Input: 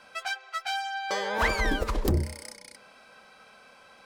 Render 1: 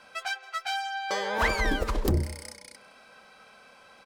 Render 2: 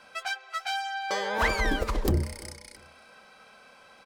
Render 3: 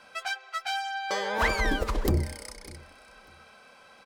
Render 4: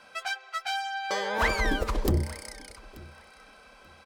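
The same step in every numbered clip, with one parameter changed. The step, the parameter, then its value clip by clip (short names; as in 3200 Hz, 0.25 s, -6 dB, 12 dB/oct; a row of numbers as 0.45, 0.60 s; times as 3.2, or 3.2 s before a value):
feedback echo, time: 0.166, 0.343, 0.597, 0.884 s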